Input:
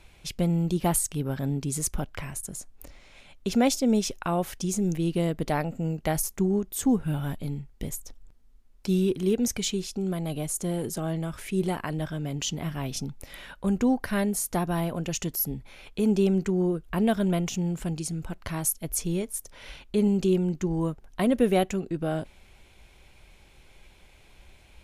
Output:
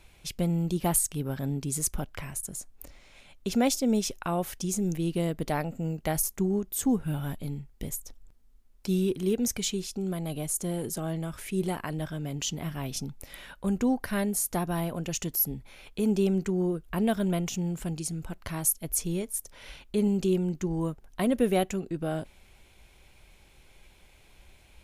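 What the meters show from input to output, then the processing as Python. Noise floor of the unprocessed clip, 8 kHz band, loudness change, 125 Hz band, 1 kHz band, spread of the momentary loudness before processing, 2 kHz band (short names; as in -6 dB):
-56 dBFS, +0.5 dB, -2.0 dB, -2.5 dB, -2.5 dB, 12 LU, -2.5 dB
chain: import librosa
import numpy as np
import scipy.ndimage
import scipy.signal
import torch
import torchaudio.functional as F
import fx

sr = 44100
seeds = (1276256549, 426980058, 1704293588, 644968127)

y = fx.high_shelf(x, sr, hz=9600.0, db=7.0)
y = y * librosa.db_to_amplitude(-2.5)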